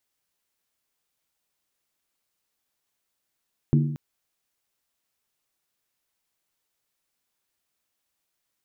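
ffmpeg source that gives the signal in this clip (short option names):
-f lavfi -i "aevalsrc='0.188*pow(10,-3*t/0.81)*sin(2*PI*147*t)+0.1*pow(10,-3*t/0.642)*sin(2*PI*234.3*t)+0.0531*pow(10,-3*t/0.554)*sin(2*PI*314*t)+0.0282*pow(10,-3*t/0.535)*sin(2*PI*337.5*t)+0.015*pow(10,-3*t/0.497)*sin(2*PI*390*t)':d=0.23:s=44100"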